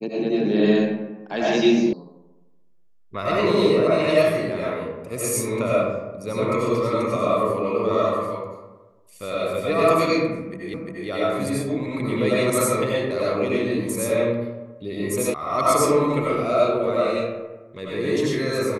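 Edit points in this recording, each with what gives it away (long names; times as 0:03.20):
0:01.93: cut off before it has died away
0:10.74: the same again, the last 0.35 s
0:15.34: cut off before it has died away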